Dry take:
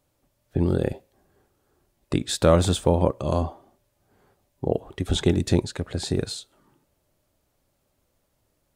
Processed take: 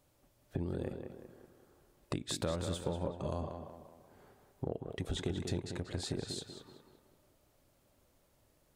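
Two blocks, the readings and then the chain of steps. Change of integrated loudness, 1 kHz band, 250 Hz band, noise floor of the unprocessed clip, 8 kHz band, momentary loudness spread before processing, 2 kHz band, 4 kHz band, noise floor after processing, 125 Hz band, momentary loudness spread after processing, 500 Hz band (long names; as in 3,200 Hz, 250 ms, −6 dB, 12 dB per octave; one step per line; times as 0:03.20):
−15.0 dB, −15.5 dB, −14.5 dB, −72 dBFS, −12.0 dB, 12 LU, −12.0 dB, −11.5 dB, −71 dBFS, −14.5 dB, 16 LU, −15.5 dB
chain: downward compressor 4 to 1, threshold −37 dBFS, peak gain reduction 20.5 dB
tape delay 188 ms, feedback 50%, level −5 dB, low-pass 2,800 Hz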